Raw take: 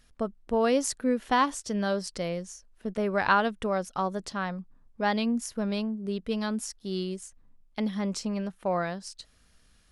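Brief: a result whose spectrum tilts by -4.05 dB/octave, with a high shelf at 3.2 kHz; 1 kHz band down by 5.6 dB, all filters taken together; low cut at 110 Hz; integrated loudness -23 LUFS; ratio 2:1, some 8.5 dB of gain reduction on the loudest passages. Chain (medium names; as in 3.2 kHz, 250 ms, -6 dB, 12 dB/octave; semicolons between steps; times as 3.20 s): high-pass 110 Hz; peaking EQ 1 kHz -7.5 dB; treble shelf 3.2 kHz +3 dB; compression 2:1, threshold -38 dBFS; trim +14.5 dB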